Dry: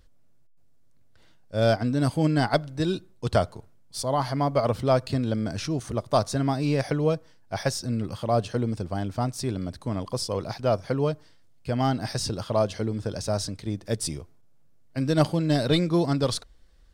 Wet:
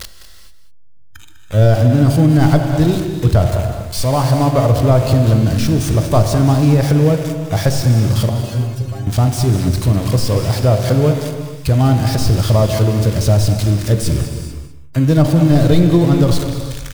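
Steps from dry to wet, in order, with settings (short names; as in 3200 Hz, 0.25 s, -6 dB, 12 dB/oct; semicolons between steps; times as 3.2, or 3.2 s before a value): switching spikes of -16 dBFS; RIAA curve playback; spectral noise reduction 15 dB; bell 230 Hz -6 dB 0.27 oct; de-hum 47.02 Hz, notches 23; in parallel at -1 dB: compressor, threshold -24 dBFS, peak gain reduction 14 dB; 8.29–9.07 on the sum: metallic resonator 130 Hz, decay 0.21 s, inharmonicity 0.002; echo 0.2 s -12.5 dB; non-linear reverb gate 0.47 s flat, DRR 6.5 dB; maximiser +4.5 dB; gain -1 dB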